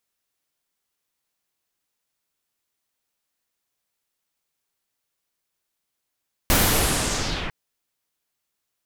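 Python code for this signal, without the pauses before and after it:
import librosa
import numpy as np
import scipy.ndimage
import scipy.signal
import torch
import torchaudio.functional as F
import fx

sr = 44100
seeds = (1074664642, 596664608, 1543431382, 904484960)

y = fx.riser_noise(sr, seeds[0], length_s=1.0, colour='pink', kind='lowpass', start_hz=16000.0, end_hz=2000.0, q=2.0, swell_db=-13, law='linear')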